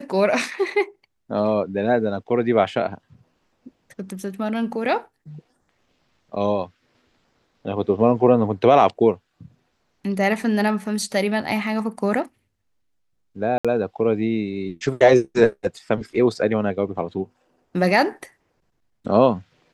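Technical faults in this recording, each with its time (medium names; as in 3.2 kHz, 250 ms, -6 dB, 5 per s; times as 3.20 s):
13.58–13.65 s: dropout 66 ms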